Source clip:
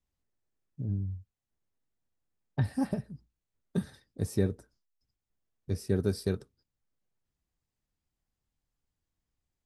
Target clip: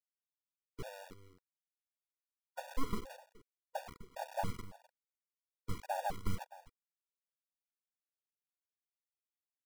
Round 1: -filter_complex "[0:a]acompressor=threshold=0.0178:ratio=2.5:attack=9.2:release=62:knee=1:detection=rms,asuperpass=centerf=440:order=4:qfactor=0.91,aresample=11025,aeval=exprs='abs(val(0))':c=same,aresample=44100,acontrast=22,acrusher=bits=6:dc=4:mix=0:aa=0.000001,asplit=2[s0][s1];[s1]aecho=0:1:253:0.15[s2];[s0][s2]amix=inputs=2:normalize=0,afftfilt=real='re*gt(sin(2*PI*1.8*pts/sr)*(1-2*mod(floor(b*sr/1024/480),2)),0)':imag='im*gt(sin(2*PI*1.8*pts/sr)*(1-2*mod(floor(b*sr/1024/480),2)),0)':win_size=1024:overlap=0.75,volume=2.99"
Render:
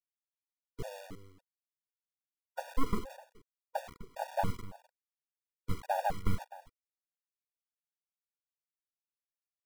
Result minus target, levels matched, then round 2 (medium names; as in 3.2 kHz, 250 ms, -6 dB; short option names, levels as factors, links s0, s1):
compression: peak gain reduction -5.5 dB
-filter_complex "[0:a]acompressor=threshold=0.00631:ratio=2.5:attack=9.2:release=62:knee=1:detection=rms,asuperpass=centerf=440:order=4:qfactor=0.91,aresample=11025,aeval=exprs='abs(val(0))':c=same,aresample=44100,acontrast=22,acrusher=bits=6:dc=4:mix=0:aa=0.000001,asplit=2[s0][s1];[s1]aecho=0:1:253:0.15[s2];[s0][s2]amix=inputs=2:normalize=0,afftfilt=real='re*gt(sin(2*PI*1.8*pts/sr)*(1-2*mod(floor(b*sr/1024/480),2)),0)':imag='im*gt(sin(2*PI*1.8*pts/sr)*(1-2*mod(floor(b*sr/1024/480),2)),0)':win_size=1024:overlap=0.75,volume=2.99"